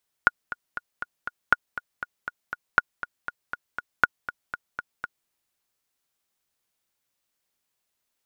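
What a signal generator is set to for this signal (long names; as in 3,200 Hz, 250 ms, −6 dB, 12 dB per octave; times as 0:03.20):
click track 239 BPM, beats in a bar 5, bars 4, 1,440 Hz, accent 14.5 dB −2.5 dBFS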